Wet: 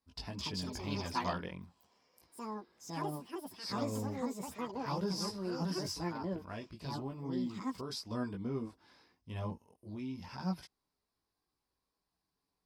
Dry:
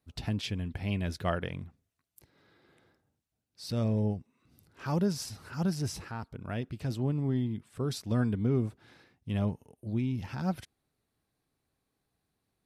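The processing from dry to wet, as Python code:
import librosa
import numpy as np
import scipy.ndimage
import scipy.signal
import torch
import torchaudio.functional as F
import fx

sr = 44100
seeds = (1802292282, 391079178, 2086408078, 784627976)

y = fx.chorus_voices(x, sr, voices=4, hz=0.25, base_ms=19, depth_ms=3.6, mix_pct=45)
y = fx.echo_pitch(y, sr, ms=265, semitones=6, count=2, db_per_echo=-3.0)
y = fx.graphic_eq_31(y, sr, hz=(125, 1000, 5000), db=(-11, 11, 12))
y = y * 10.0 ** (-4.5 / 20.0)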